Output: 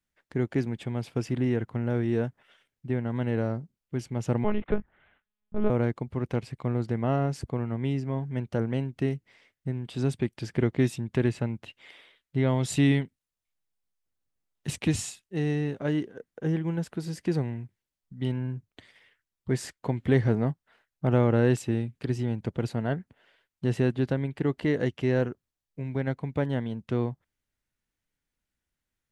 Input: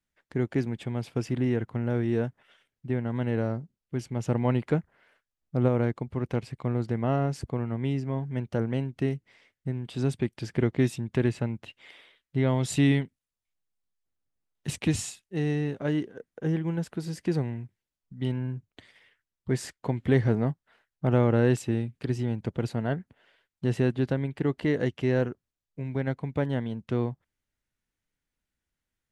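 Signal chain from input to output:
0:04.44–0:05.70: one-pitch LPC vocoder at 8 kHz 210 Hz

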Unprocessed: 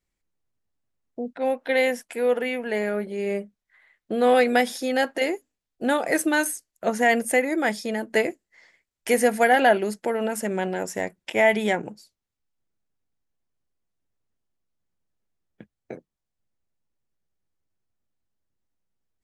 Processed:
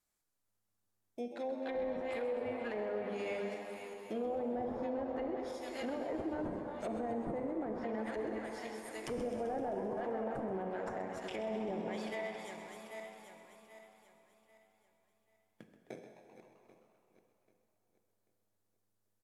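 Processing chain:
feedback delay that plays each chunk backwards 394 ms, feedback 57%, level −13.5 dB
first-order pre-emphasis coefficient 0.8
mains-hum notches 50/100/150/200/250/300/350/400/450/500 Hz
in parallel at −7.5 dB: sample-rate reduction 2,900 Hz, jitter 0%
on the sum: treble cut that deepens with the level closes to 480 Hz, closed at −30 dBFS
on a send at −6.5 dB: convolution reverb RT60 2.8 s, pre-delay 18 ms
on the sum: brickwall limiter −32.5 dBFS, peak gain reduction 10 dB
low-shelf EQ 130 Hz −4.5 dB
echo with shifted repeats 130 ms, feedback 65%, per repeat +100 Hz, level −12.5 dB
level +2.5 dB

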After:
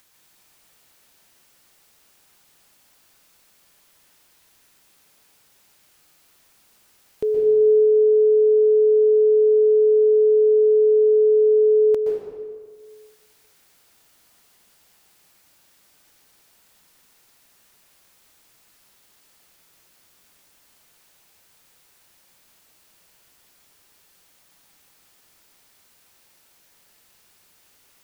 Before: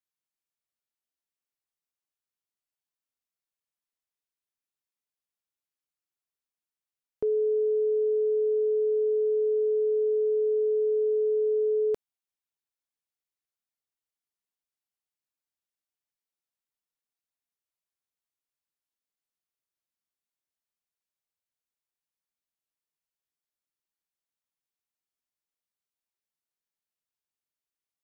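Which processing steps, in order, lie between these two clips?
upward compression, threshold −44 dBFS
convolution reverb RT60 1.7 s, pre-delay 117 ms, DRR −1 dB
level +4.5 dB

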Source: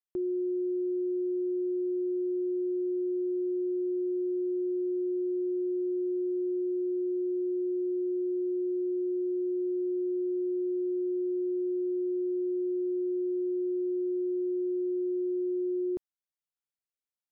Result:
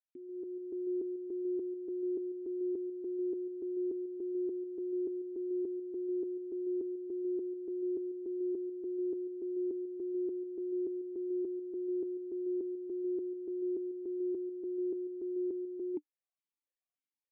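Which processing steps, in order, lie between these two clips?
automatic gain control gain up to 12 dB
formant filter that steps through the vowels 6.9 Hz
level −4.5 dB

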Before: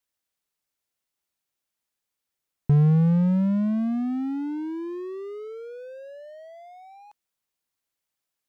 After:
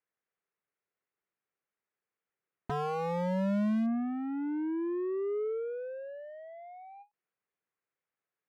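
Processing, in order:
loudspeaker in its box 140–2,200 Hz, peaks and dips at 260 Hz −8 dB, 430 Hz +5 dB, 620 Hz −3 dB, 900 Hz −4 dB
treble cut that deepens with the level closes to 600 Hz, closed at −21 dBFS
wave folding −25 dBFS
every ending faded ahead of time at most 360 dB per second

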